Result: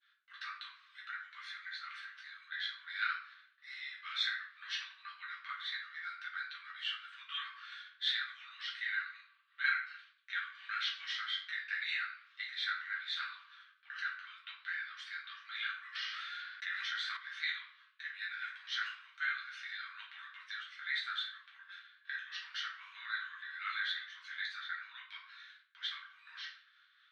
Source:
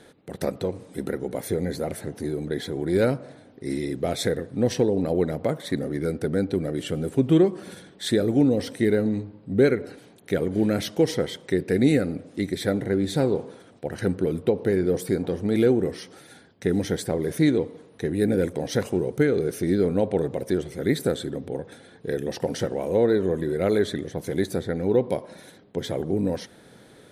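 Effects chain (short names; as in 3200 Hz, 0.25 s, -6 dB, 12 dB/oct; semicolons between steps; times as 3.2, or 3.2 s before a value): LPF 3100 Hz 24 dB/oct; expander -43 dBFS; rippled Chebyshev high-pass 1100 Hz, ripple 6 dB; tilt +3 dB/oct; shoebox room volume 57 m³, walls mixed, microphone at 1.2 m; 15.95–17.17 fast leveller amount 70%; gain -5 dB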